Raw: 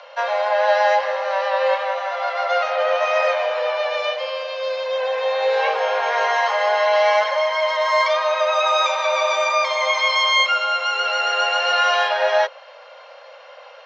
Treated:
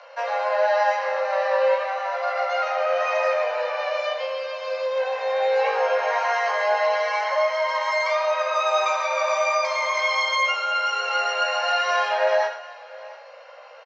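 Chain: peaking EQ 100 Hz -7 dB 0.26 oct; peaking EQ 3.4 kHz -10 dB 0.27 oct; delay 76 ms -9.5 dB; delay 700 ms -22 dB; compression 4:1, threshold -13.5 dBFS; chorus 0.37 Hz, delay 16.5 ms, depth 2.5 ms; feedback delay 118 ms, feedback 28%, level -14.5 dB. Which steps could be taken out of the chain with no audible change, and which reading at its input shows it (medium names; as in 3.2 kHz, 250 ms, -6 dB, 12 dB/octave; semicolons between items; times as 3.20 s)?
peaking EQ 100 Hz: input has nothing below 400 Hz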